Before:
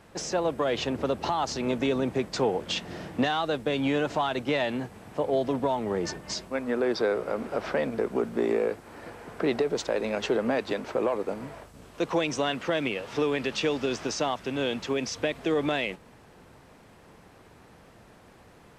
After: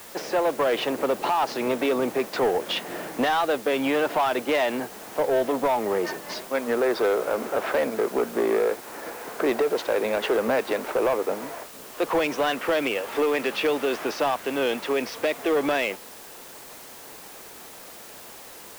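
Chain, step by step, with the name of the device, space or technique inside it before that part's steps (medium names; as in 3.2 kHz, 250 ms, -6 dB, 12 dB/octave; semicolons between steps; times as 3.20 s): tape answering machine (band-pass 350–2800 Hz; saturation -24.5 dBFS, distortion -14 dB; wow and flutter; white noise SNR 19 dB); trim +8 dB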